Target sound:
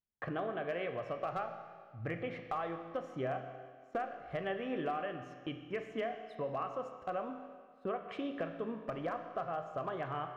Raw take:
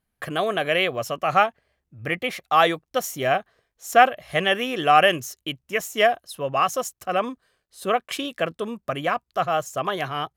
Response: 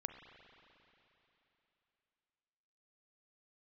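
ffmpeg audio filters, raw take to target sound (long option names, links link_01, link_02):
-filter_complex "[0:a]lowpass=1500,agate=range=-16dB:threshold=-48dB:ratio=16:detection=peak,acompressor=threshold=-30dB:ratio=10,aeval=exprs='clip(val(0),-1,0.0596)':channel_layout=same[link_01];[1:a]atrim=start_sample=2205,asetrate=83790,aresample=44100[link_02];[link_01][link_02]afir=irnorm=-1:irlink=0,volume=4dB"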